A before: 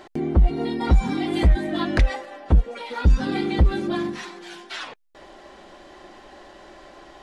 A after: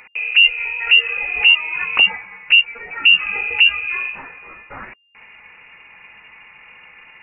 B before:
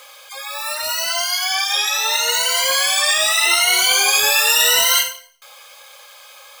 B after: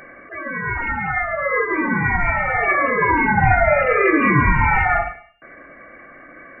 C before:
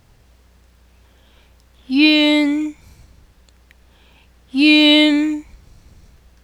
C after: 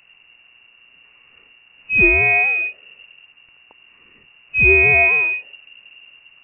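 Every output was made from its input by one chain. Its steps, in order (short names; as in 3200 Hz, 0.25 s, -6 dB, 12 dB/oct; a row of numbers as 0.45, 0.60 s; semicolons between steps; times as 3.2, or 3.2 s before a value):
inverted band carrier 2800 Hz; normalise peaks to -3 dBFS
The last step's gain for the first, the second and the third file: +1.5, +4.5, -0.5 dB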